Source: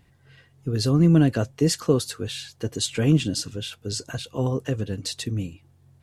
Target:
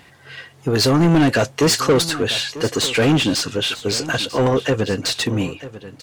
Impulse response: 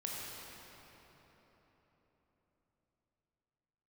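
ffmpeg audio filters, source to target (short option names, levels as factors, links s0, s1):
-filter_complex "[0:a]asetnsamples=n=441:p=0,asendcmd='2.02 lowpass f 2800',asplit=2[s0][s1];[s1]highpass=f=720:p=1,volume=20,asoftclip=type=tanh:threshold=0.473[s2];[s0][s2]amix=inputs=2:normalize=0,lowpass=f=5400:p=1,volume=0.501,aecho=1:1:944:0.168"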